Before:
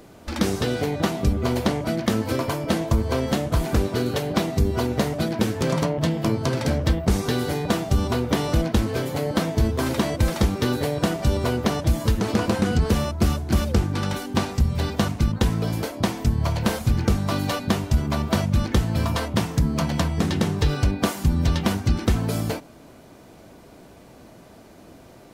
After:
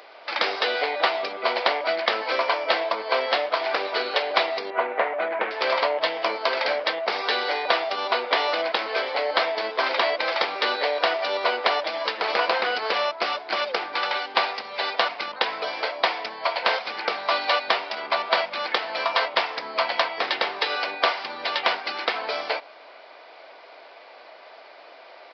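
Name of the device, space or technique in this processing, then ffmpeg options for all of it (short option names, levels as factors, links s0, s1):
musical greeting card: -filter_complex "[0:a]aresample=11025,aresample=44100,highpass=f=580:w=0.5412,highpass=f=580:w=1.3066,equalizer=f=2200:t=o:w=0.36:g=5,asettb=1/sr,asplit=3[s0][s1][s2];[s0]atrim=end=4.704[s3];[s1]atrim=start=4.7:end=5.51,asetpts=PTS-STARTPTS,afade=t=in:d=0.004:c=qsin,afade=t=out:st=0.806:d=0.004:c=qsin,lowpass=f=2300:w=0.5412,lowpass=f=2300:w=1.3066[s4];[s2]atrim=start=5.506[s5];[s3][s4]acrossfade=d=0.004:c1=hsin:c2=qsin[s6];[s6][s5]acrossfade=d=0.004:c1=qsin:c2=hsin,volume=2.11"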